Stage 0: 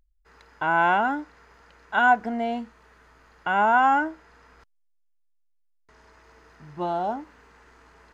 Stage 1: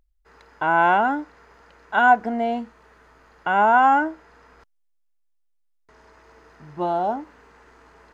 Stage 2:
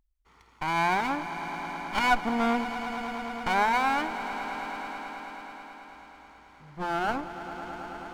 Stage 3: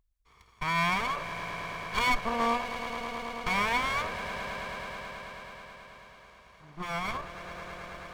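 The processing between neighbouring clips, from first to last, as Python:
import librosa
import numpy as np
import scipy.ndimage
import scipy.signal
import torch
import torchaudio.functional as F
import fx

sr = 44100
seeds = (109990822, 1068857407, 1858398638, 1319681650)

y1 = fx.peak_eq(x, sr, hz=510.0, db=4.5, octaves=2.6)
y2 = fx.lower_of_two(y1, sr, delay_ms=0.91)
y2 = fx.rider(y2, sr, range_db=10, speed_s=0.5)
y2 = fx.echo_swell(y2, sr, ms=108, loudest=5, wet_db=-15)
y2 = y2 * librosa.db_to_amplitude(-2.5)
y3 = fx.lower_of_two(y2, sr, delay_ms=1.8)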